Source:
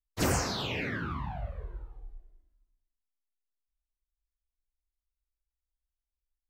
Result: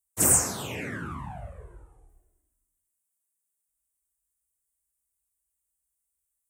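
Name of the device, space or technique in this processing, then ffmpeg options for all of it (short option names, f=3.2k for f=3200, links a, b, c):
budget condenser microphone: -filter_complex "[0:a]asettb=1/sr,asplit=3[a][b][c];[a]atrim=end=0.754[d];[b]atrim=start=0.75:end=2.09,asetpts=PTS-STARTPTS,afade=t=in:d=0.004:c=qsin,afade=t=out:st=1.336:d=0.004:c=qsin,lowpass=f=11k:w=0.5412,lowpass=f=11k:w=1.3066[e];[c]atrim=start=2.086[f];[d][e]acrossfade=d=0.004:c1=hsin:c2=qsin[g];[g][f]acrossfade=d=0.004:c1=qsin:c2=hsin,highpass=71,highshelf=f=6.2k:t=q:w=3:g=13.5"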